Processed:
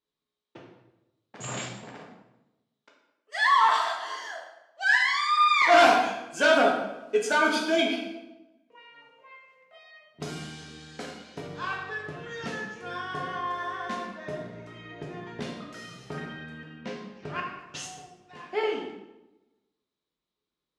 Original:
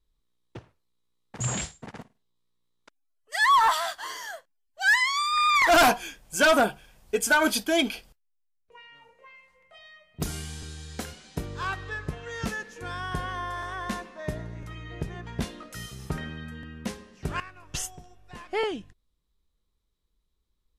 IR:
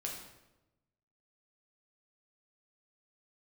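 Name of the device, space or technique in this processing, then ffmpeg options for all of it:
supermarket ceiling speaker: -filter_complex "[0:a]asplit=3[s0][s1][s2];[s0]afade=t=out:st=16.75:d=0.02[s3];[s1]lowpass=5100,afade=t=in:st=16.75:d=0.02,afade=t=out:st=17.39:d=0.02[s4];[s2]afade=t=in:st=17.39:d=0.02[s5];[s3][s4][s5]amix=inputs=3:normalize=0,highpass=230,lowpass=5200[s6];[1:a]atrim=start_sample=2205[s7];[s6][s7]afir=irnorm=-1:irlink=0"

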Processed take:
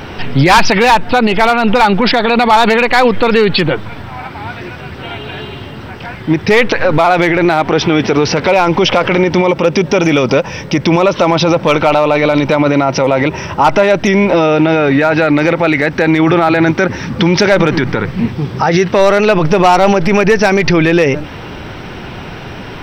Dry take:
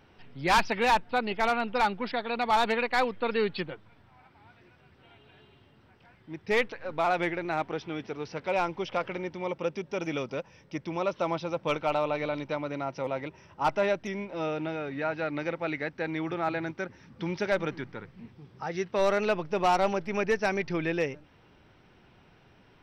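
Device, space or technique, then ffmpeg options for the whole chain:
loud club master: -af "acompressor=threshold=0.0355:ratio=2,asoftclip=type=hard:threshold=0.075,alimiter=level_in=44.7:limit=0.891:release=50:level=0:latency=1,volume=0.891"

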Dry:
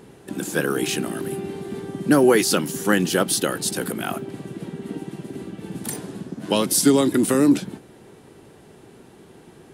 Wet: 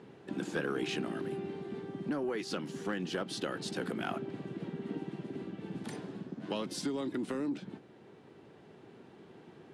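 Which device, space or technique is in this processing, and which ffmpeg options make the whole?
AM radio: -af "highpass=110,lowpass=3900,acompressor=threshold=0.0891:ratio=5,asoftclip=type=tanh:threshold=0.178,tremolo=f=0.21:d=0.32,volume=0.473"

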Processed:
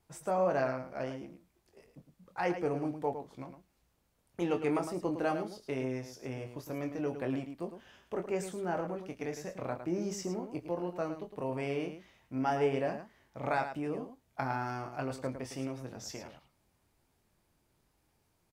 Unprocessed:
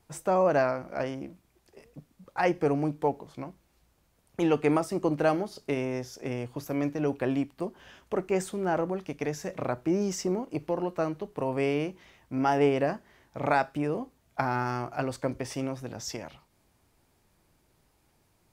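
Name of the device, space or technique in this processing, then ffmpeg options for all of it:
slapback doubling: -filter_complex "[0:a]asplit=3[s0][s1][s2];[s1]adelay=23,volume=0.447[s3];[s2]adelay=108,volume=0.355[s4];[s0][s3][s4]amix=inputs=3:normalize=0,volume=0.422"

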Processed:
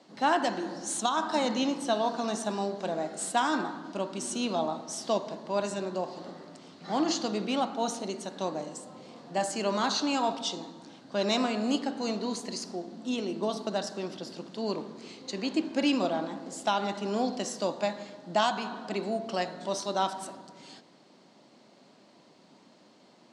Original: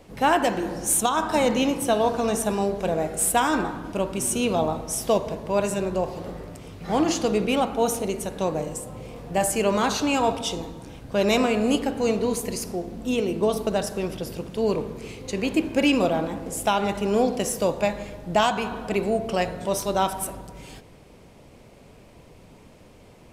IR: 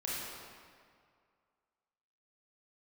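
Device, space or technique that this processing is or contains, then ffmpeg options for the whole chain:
television speaker: -af "highpass=f=200:w=0.5412,highpass=f=200:w=1.3066,equalizer=f=460:t=q:w=4:g=-9,equalizer=f=2400:t=q:w=4:g=-7,equalizer=f=4300:t=q:w=4:g=8,lowpass=f=7400:w=0.5412,lowpass=f=7400:w=1.3066,volume=0.596"

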